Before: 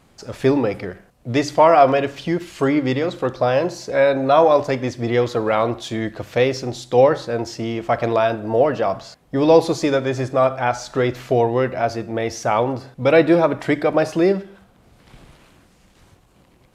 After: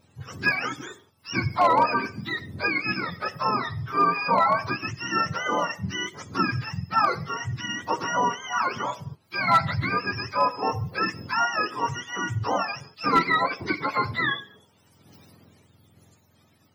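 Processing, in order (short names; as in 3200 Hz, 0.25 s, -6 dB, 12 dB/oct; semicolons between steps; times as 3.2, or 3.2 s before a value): spectrum mirrored in octaves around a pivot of 810 Hz; overloaded stage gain 7.5 dB; gain -4.5 dB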